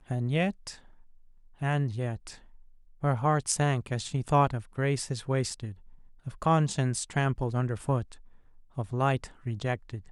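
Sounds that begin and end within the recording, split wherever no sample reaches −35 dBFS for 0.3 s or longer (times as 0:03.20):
0:01.62–0:02.33
0:03.03–0:05.72
0:06.27–0:08.12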